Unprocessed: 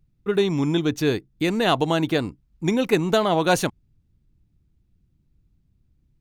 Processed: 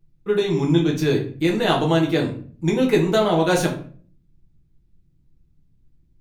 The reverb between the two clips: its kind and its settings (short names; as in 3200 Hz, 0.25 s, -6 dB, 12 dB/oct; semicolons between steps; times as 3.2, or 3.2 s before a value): shoebox room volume 39 m³, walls mixed, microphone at 0.65 m; gain -3 dB